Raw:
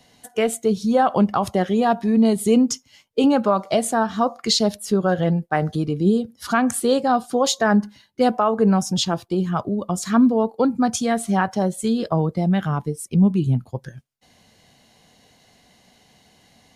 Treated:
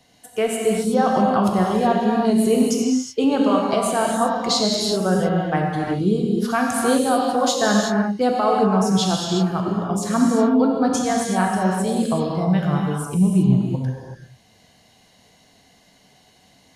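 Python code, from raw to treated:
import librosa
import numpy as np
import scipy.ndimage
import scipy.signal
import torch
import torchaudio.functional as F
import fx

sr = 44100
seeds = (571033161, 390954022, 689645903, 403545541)

y = fx.rev_gated(x, sr, seeds[0], gate_ms=400, shape='flat', drr_db=-1.5)
y = y * librosa.db_to_amplitude(-3.0)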